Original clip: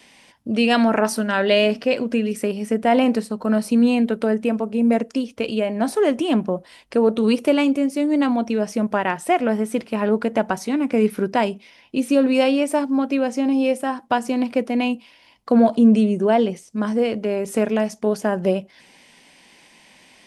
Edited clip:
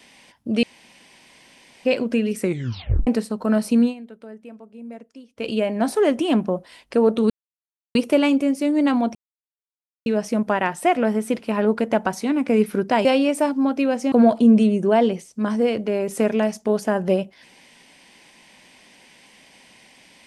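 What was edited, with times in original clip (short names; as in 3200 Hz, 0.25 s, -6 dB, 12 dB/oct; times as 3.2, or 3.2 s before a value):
0.63–1.85 room tone
2.4 tape stop 0.67 s
3.81–5.48 dip -19.5 dB, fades 0.13 s
7.3 insert silence 0.65 s
8.5 insert silence 0.91 s
11.49–12.38 cut
13.45–15.49 cut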